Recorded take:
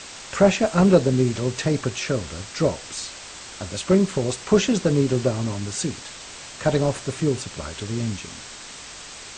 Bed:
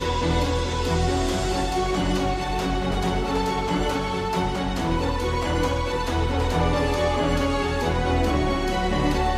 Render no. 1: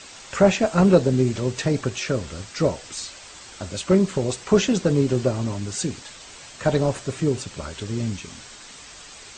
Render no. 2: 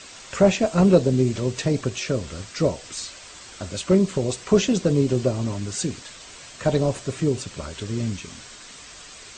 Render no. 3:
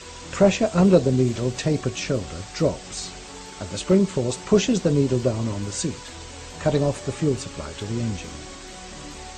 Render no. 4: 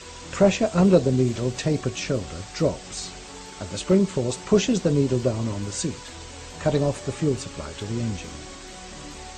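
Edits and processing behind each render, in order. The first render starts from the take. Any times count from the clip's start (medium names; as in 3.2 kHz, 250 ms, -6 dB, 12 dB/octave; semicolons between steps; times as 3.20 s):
noise reduction 6 dB, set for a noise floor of -40 dBFS
band-stop 840 Hz, Q 12; dynamic bell 1.5 kHz, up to -5 dB, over -39 dBFS, Q 1.5
add bed -18 dB
trim -1 dB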